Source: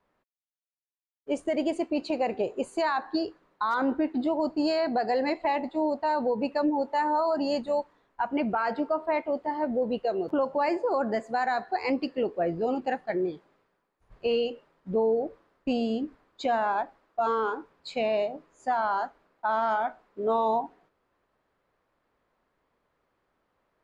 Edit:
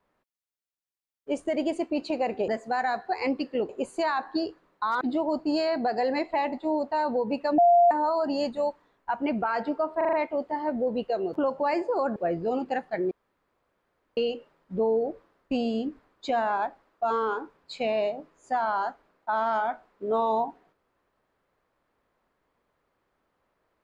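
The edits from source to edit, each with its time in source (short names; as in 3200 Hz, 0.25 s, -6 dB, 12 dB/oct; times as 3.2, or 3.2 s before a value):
3.8–4.12 cut
6.69–7.02 bleep 695 Hz -14.5 dBFS
9.08 stutter 0.04 s, 5 plays
11.11–12.32 move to 2.48
13.27–14.33 room tone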